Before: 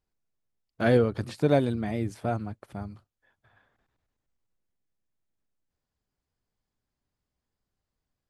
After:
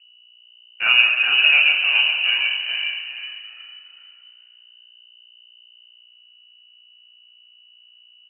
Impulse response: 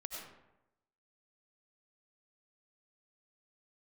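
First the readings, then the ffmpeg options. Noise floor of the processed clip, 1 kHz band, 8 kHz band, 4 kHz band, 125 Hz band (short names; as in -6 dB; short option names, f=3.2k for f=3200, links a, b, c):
-52 dBFS, +1.5 dB, under -25 dB, +30.0 dB, under -30 dB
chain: -filter_complex "[0:a]asplit=5[a][b][c][d][e];[b]adelay=410,afreqshift=-65,volume=-4dB[f];[c]adelay=820,afreqshift=-130,volume=-13.9dB[g];[d]adelay=1230,afreqshift=-195,volume=-23.8dB[h];[e]adelay=1640,afreqshift=-260,volume=-33.7dB[i];[a][f][g][h][i]amix=inputs=5:normalize=0,asplit=2[j][k];[1:a]atrim=start_sample=2205,lowpass=3.5k,adelay=33[l];[k][l]afir=irnorm=-1:irlink=0,volume=2.5dB[m];[j][m]amix=inputs=2:normalize=0,aeval=exprs='val(0)+0.002*(sin(2*PI*60*n/s)+sin(2*PI*2*60*n/s)/2+sin(2*PI*3*60*n/s)/3+sin(2*PI*4*60*n/s)/4+sin(2*PI*5*60*n/s)/5)':c=same,lowpass=f=2.6k:t=q:w=0.5098,lowpass=f=2.6k:t=q:w=0.6013,lowpass=f=2.6k:t=q:w=0.9,lowpass=f=2.6k:t=q:w=2.563,afreqshift=-3000,volume=3.5dB"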